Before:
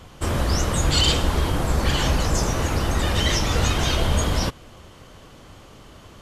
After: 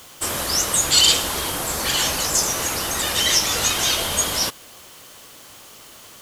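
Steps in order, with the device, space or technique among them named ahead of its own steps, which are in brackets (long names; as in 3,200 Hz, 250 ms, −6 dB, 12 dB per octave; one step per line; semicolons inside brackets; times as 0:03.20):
turntable without a phono preamp (RIAA equalisation recording; white noise bed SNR 26 dB)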